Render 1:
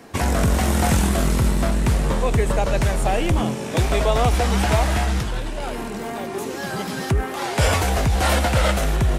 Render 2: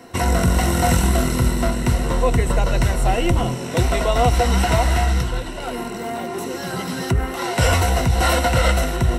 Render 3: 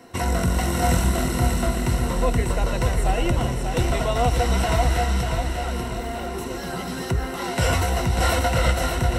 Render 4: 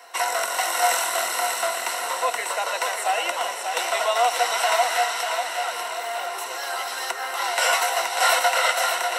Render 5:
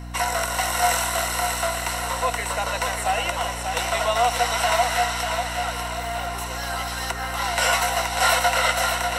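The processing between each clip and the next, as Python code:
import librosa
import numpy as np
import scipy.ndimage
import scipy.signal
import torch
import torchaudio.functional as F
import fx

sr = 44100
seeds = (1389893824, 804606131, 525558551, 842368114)

y1 = fx.ripple_eq(x, sr, per_octave=2.0, db=10)
y2 = fx.echo_feedback(y1, sr, ms=592, feedback_pct=43, wet_db=-6.0)
y2 = y2 * librosa.db_to_amplitude(-4.5)
y3 = scipy.signal.sosfilt(scipy.signal.butter(4, 670.0, 'highpass', fs=sr, output='sos'), y2)
y3 = y3 * librosa.db_to_amplitude(5.5)
y4 = fx.add_hum(y3, sr, base_hz=60, snr_db=11)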